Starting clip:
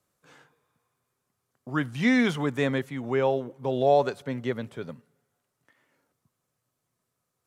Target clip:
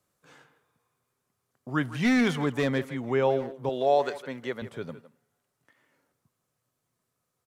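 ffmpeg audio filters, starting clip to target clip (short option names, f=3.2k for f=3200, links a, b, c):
-filter_complex "[0:a]asettb=1/sr,asplit=3[a][b][c];[a]atrim=end=1.994[d];[b]atrim=start=1.99:end=2.96,asetpts=PTS-STARTPTS,afade=t=in:d=0.004:c=qsin,afade=t=out:st=0.966:d=0.004:c=qsin,volume=18dB,asoftclip=hard,volume=-18dB[e];[c]atrim=start=2.956[f];[d][e]acrossfade=d=0.004:c1=hsin:c2=qsin[g];[g][f]acrossfade=d=0.004:c1=qsin:c2=hsin,asettb=1/sr,asplit=3[h][i][j];[h]atrim=end=3.694[k];[i]atrim=start=3.69:end=4.62,asetpts=PTS-STARTPTS,afade=t=in:d=0.004:c=qsin,afade=t=out:st=0.926:d=0.004:c=qsin,highpass=f=450:p=1[l];[j]atrim=start=4.616[m];[k][l]acrossfade=d=0.004:c1=hsin:c2=qsin[n];[n][m]acrossfade=d=0.004:c1=qsin:c2=hsin,asplit=2[o][p];[p]adelay=160,highpass=300,lowpass=3.4k,asoftclip=type=hard:threshold=-21.5dB,volume=-13dB[q];[o][q]amix=inputs=2:normalize=0"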